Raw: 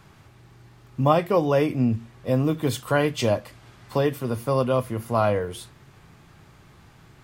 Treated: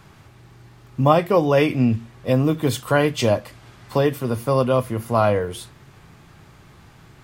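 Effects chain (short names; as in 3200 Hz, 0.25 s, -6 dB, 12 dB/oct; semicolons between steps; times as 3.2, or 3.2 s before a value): 1.57–2.33 dynamic EQ 2800 Hz, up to +7 dB, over -45 dBFS, Q 0.84; gain +3.5 dB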